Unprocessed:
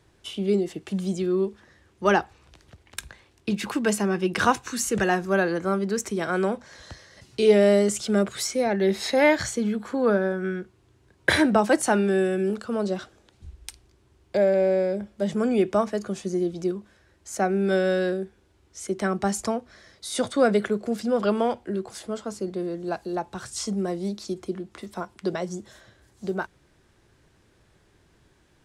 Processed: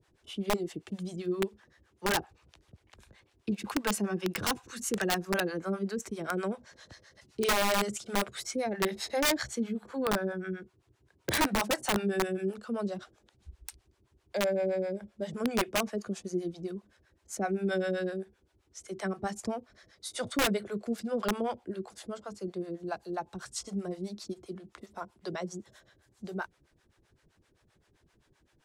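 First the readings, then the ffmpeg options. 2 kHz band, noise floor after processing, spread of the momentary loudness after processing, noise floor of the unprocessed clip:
-6.5 dB, -71 dBFS, 14 LU, -62 dBFS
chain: -filter_complex "[0:a]acrossover=split=520[s0][s1];[s0]aeval=exprs='val(0)*(1-1/2+1/2*cos(2*PI*7.7*n/s))':c=same[s2];[s1]aeval=exprs='val(0)*(1-1/2-1/2*cos(2*PI*7.7*n/s))':c=same[s3];[s2][s3]amix=inputs=2:normalize=0,aeval=exprs='(mod(7.5*val(0)+1,2)-1)/7.5':c=same,volume=0.708"

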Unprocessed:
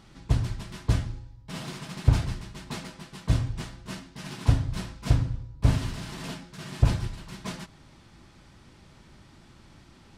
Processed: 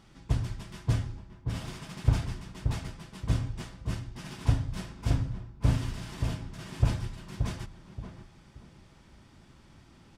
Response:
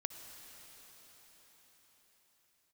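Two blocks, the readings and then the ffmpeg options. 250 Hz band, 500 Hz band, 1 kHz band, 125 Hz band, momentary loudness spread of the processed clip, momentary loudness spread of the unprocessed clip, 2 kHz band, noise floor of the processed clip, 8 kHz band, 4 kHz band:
-3.0 dB, -3.0 dB, -3.5 dB, -3.0 dB, 13 LU, 15 LU, -4.0 dB, -57 dBFS, -4.0 dB, -4.5 dB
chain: -filter_complex "[0:a]bandreject=f=4100:w=16,asplit=2[s0][s1];[s1]adelay=577,lowpass=f=820:p=1,volume=0.531,asplit=2[s2][s3];[s3]adelay=577,lowpass=f=820:p=1,volume=0.31,asplit=2[s4][s5];[s5]adelay=577,lowpass=f=820:p=1,volume=0.31,asplit=2[s6][s7];[s7]adelay=577,lowpass=f=820:p=1,volume=0.31[s8];[s2][s4][s6][s8]amix=inputs=4:normalize=0[s9];[s0][s9]amix=inputs=2:normalize=0,volume=0.631"

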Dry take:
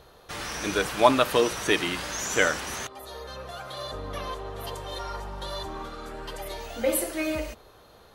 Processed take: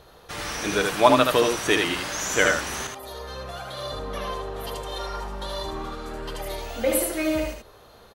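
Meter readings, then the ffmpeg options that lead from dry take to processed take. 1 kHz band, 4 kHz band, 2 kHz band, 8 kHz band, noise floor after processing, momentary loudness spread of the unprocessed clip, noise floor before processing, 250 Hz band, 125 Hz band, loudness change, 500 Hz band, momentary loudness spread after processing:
+3.0 dB, +3.0 dB, +3.0 dB, +3.0 dB, -51 dBFS, 17 LU, -54 dBFS, +3.5 dB, +3.0 dB, +3.0 dB, +3.0 dB, 16 LU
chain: -af "aecho=1:1:77:0.631,volume=1.19"

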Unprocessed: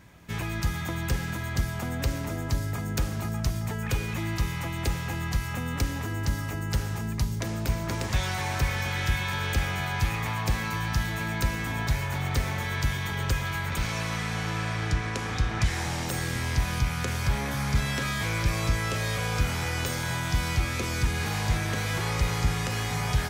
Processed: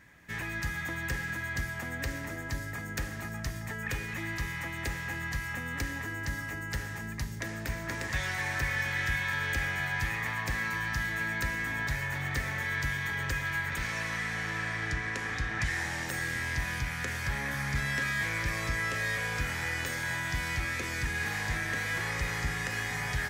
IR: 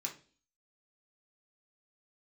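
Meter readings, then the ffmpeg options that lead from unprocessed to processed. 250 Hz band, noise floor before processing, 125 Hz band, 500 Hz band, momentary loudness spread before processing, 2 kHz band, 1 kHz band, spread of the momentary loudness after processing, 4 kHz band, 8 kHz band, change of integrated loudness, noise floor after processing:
-7.5 dB, -32 dBFS, -9.0 dB, -6.5 dB, 3 LU, +2.5 dB, -5.5 dB, 6 LU, -5.5 dB, -5.0 dB, -3.5 dB, -38 dBFS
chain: -filter_complex "[0:a]equalizer=f=1800:w=3.4:g=13.5,asplit=2[s0][s1];[1:a]atrim=start_sample=2205[s2];[s1][s2]afir=irnorm=-1:irlink=0,volume=0.355[s3];[s0][s3]amix=inputs=2:normalize=0,volume=0.398"

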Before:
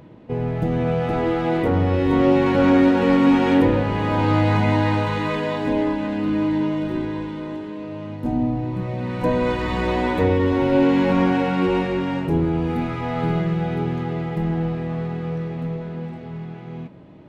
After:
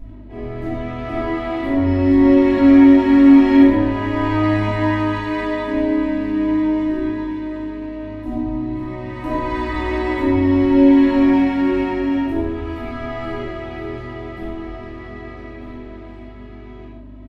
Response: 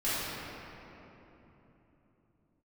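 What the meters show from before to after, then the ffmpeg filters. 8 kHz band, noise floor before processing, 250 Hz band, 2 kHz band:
no reading, -36 dBFS, +5.5 dB, +1.0 dB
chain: -filter_complex "[0:a]aeval=exprs='val(0)+0.0355*(sin(2*PI*50*n/s)+sin(2*PI*2*50*n/s)/2+sin(2*PI*3*50*n/s)/3+sin(2*PI*4*50*n/s)/4+sin(2*PI*5*50*n/s)/5)':c=same,aecho=1:1:3.1:0.97[s0];[1:a]atrim=start_sample=2205,atrim=end_sample=6615[s1];[s0][s1]afir=irnorm=-1:irlink=0,volume=0.299"

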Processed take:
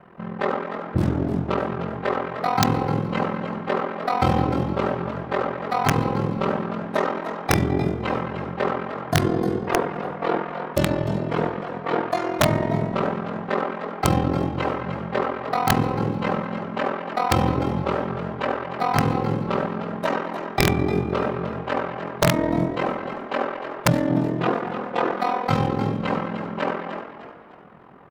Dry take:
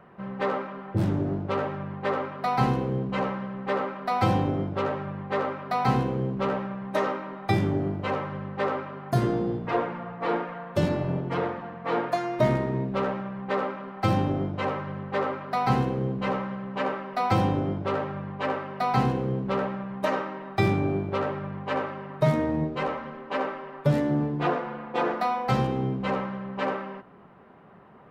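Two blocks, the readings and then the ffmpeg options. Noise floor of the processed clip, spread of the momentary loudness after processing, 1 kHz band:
-36 dBFS, 7 LU, +3.5 dB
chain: -filter_complex "[0:a]asplit=2[s0][s1];[s1]adelay=210,highpass=300,lowpass=3400,asoftclip=type=hard:threshold=0.126,volume=0.224[s2];[s0][s2]amix=inputs=2:normalize=0,aeval=exprs='val(0)*sin(2*PI*21*n/s)':c=same,asplit=2[s3][s4];[s4]asplit=4[s5][s6][s7][s8];[s5]adelay=303,afreqshift=47,volume=0.316[s9];[s6]adelay=606,afreqshift=94,volume=0.111[s10];[s7]adelay=909,afreqshift=141,volume=0.0389[s11];[s8]adelay=1212,afreqshift=188,volume=0.0135[s12];[s9][s10][s11][s12]amix=inputs=4:normalize=0[s13];[s3][s13]amix=inputs=2:normalize=0,aeval=exprs='(mod(4.73*val(0)+1,2)-1)/4.73':c=same,volume=2"

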